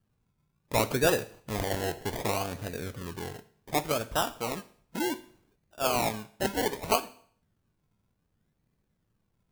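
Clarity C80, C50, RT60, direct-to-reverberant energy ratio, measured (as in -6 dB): 20.5 dB, 17.0 dB, 0.55 s, 12.0 dB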